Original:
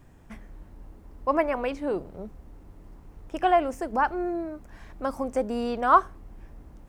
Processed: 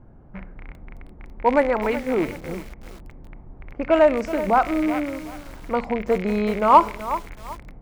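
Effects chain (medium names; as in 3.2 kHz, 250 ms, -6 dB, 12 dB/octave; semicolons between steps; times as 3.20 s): rattle on loud lows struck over -41 dBFS, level -27 dBFS; in parallel at -9 dB: hard clipper -15.5 dBFS, distortion -13 dB; on the sum: level-controlled noise filter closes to 1.1 kHz, open at -16 dBFS; on a send at -16.5 dB: reverberation RT60 0.60 s, pre-delay 5 ms; on the sum: tape speed -12%; bit-crushed delay 376 ms, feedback 35%, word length 6-bit, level -12.5 dB; trim +3 dB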